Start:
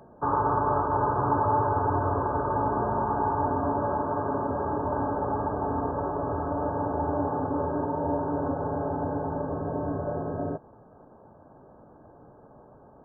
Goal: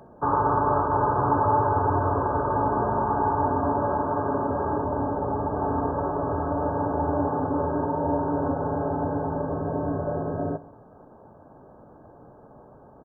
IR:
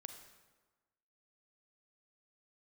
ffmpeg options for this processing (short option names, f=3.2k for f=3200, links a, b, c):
-filter_complex "[0:a]asettb=1/sr,asplit=3[a][b][c];[a]atrim=end=4.844[d];[b]atrim=start=4.84:end=5.55,asetpts=PTS-STARTPTS,afade=t=in:d=0.004:c=qsin,afade=t=out:st=0.706:d=0.004:c=qsin,lowpass=f=1k:p=1[e];[c]atrim=start=5.546[f];[d][e]acrossfade=d=0.004:c1=hsin:c2=qsin[g];[g][f]acrossfade=d=0.004:c1=qsin:c2=hsin,aecho=1:1:63|126|189|252:0.1|0.056|0.0314|0.0176,volume=2.5dB"